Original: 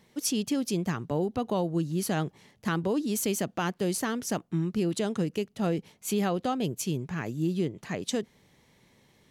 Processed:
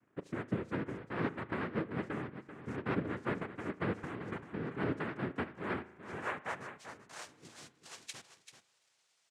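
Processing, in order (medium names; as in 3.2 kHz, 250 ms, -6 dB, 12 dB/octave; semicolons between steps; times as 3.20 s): band-pass sweep 370 Hz -> 2.6 kHz, 5.51–7.56 s; noise-vocoded speech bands 3; on a send: delay 388 ms -10.5 dB; on the sum: spring tank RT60 1 s, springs 37 ms, chirp 45 ms, DRR 16 dB; trim -4 dB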